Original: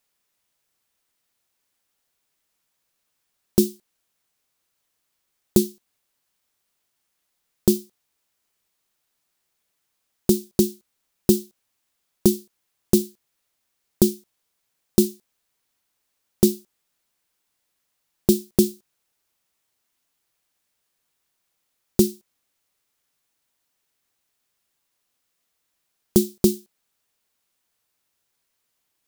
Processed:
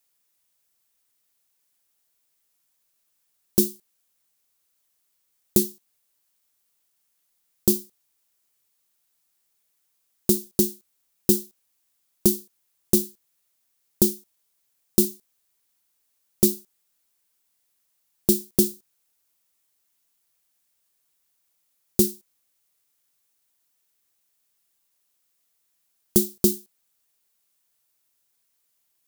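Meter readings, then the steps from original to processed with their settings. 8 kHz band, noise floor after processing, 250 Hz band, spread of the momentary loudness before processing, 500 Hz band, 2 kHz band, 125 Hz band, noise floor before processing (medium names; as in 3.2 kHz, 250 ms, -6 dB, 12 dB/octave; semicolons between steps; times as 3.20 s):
+3.0 dB, -72 dBFS, -4.0 dB, 6 LU, -4.0 dB, no reading, -4.0 dB, -76 dBFS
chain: treble shelf 6 kHz +10 dB; trim -4 dB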